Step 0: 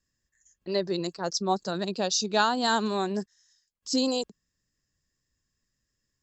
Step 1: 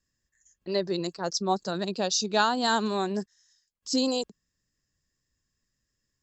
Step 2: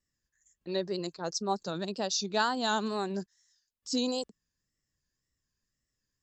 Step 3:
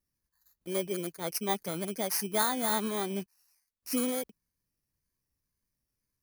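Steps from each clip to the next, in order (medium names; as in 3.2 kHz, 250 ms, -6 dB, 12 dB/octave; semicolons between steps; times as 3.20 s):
no audible change
wow and flutter 87 cents; trim -4.5 dB
bit-reversed sample order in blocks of 16 samples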